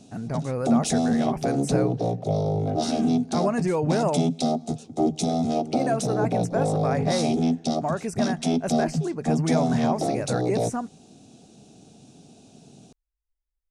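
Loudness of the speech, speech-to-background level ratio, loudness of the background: -29.0 LUFS, -3.5 dB, -25.5 LUFS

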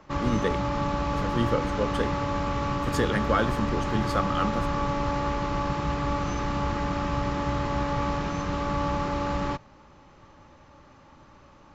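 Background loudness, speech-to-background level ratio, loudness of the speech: -28.5 LUFS, -1.0 dB, -29.5 LUFS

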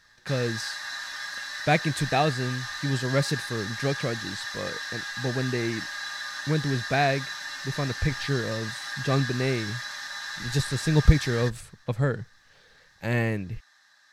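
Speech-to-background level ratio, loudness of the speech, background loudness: 5.5 dB, -28.0 LUFS, -33.5 LUFS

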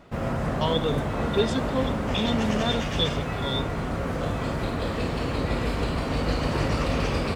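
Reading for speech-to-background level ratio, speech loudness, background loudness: -0.5 dB, -28.5 LUFS, -28.0 LUFS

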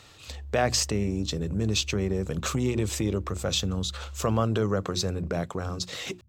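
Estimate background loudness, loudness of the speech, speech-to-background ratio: -42.5 LUFS, -28.0 LUFS, 14.5 dB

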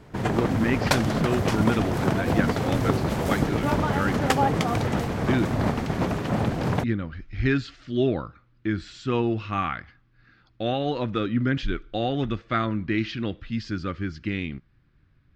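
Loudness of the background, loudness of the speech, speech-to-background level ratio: -25.0 LUFS, -28.5 LUFS, -3.5 dB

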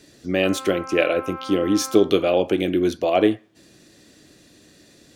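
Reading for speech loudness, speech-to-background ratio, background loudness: -21.0 LUFS, 15.0 dB, -36.0 LUFS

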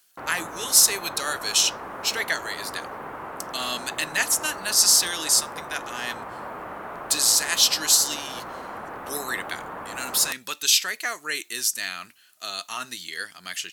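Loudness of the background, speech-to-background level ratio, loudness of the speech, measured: -36.5 LUFS, 14.5 dB, -22.0 LUFS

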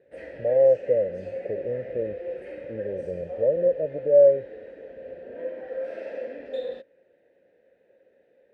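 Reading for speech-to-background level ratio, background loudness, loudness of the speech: 13.0 dB, -36.5 LUFS, -23.5 LUFS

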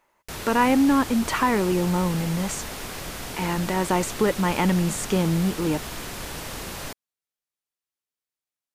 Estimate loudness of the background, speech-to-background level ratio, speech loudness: -33.5 LUFS, 10.0 dB, -23.5 LUFS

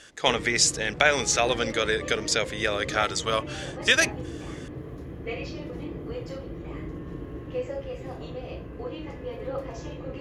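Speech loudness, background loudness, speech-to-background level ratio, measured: -24.0 LUFS, -36.5 LUFS, 12.5 dB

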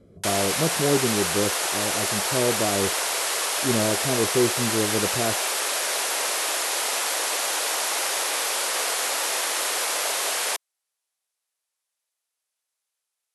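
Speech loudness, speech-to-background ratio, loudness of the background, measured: -27.0 LUFS, -3.5 dB, -23.5 LUFS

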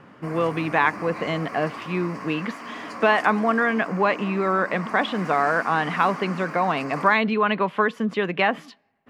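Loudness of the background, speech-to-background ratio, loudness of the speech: -35.5 LUFS, 12.5 dB, -23.0 LUFS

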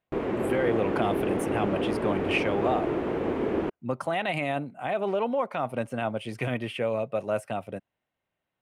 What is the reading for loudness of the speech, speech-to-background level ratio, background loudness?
-30.0 LUFS, -1.0 dB, -29.0 LUFS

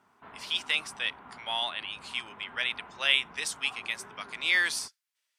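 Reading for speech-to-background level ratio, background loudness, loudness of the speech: 20.0 dB, -49.5 LUFS, -29.5 LUFS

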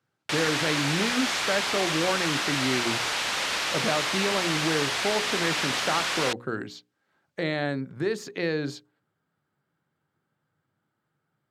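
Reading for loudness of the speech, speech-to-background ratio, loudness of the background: -30.0 LUFS, -4.0 dB, -26.0 LUFS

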